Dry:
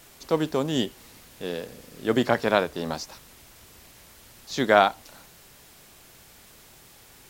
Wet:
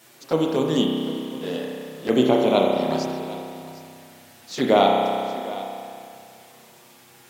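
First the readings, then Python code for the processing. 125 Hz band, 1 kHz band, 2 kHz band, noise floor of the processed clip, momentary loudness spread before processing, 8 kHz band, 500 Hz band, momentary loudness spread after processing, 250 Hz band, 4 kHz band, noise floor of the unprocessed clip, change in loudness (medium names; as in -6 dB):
+3.0 dB, +3.0 dB, -4.5 dB, -51 dBFS, 17 LU, -0.5 dB, +5.0 dB, 19 LU, +6.5 dB, +3.5 dB, -52 dBFS, +3.0 dB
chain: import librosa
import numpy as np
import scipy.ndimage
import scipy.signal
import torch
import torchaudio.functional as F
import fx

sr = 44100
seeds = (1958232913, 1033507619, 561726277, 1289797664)

y = scipy.signal.sosfilt(scipy.signal.cheby1(2, 1.0, 180.0, 'highpass', fs=sr, output='sos'), x)
y = fx.env_flanger(y, sr, rest_ms=9.7, full_db=-21.5)
y = y + 10.0 ** (-16.0 / 20.0) * np.pad(y, (int(756 * sr / 1000.0), 0))[:len(y)]
y = fx.rev_spring(y, sr, rt60_s=2.4, pass_ms=(31,), chirp_ms=55, drr_db=-0.5)
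y = y * 10.0 ** (3.5 / 20.0)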